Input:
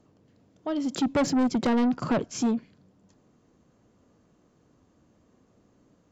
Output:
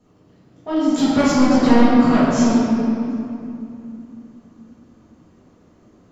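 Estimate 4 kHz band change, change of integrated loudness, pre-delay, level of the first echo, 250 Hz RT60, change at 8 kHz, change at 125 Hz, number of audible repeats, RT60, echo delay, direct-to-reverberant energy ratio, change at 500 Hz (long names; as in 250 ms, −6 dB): +9.0 dB, +10.0 dB, 4 ms, no echo audible, 3.7 s, can't be measured, +11.5 dB, no echo audible, 2.7 s, no echo audible, −13.5 dB, +9.5 dB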